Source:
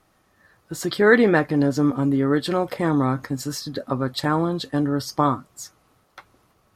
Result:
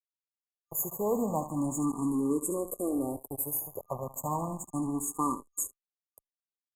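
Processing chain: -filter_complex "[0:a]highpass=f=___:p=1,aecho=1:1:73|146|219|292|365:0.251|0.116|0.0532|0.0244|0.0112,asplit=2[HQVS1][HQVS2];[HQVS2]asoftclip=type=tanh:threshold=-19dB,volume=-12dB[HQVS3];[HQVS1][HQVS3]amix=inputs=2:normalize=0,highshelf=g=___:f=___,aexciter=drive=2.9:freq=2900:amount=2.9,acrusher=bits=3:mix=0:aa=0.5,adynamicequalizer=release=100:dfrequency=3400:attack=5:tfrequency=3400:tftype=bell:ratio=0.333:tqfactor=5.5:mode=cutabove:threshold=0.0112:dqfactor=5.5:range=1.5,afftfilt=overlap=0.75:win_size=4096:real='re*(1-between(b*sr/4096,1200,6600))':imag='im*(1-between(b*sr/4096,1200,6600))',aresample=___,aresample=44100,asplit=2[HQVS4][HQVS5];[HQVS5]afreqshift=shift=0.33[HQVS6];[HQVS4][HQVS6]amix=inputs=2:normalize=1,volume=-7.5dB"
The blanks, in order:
220, 11.5, 11000, 32000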